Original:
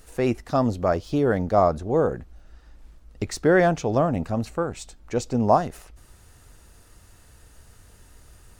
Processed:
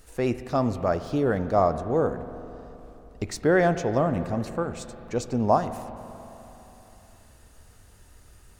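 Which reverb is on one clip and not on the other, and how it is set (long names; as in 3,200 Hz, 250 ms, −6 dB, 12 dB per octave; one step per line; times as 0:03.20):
spring reverb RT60 3.5 s, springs 40/52 ms, chirp 60 ms, DRR 11 dB
level −2.5 dB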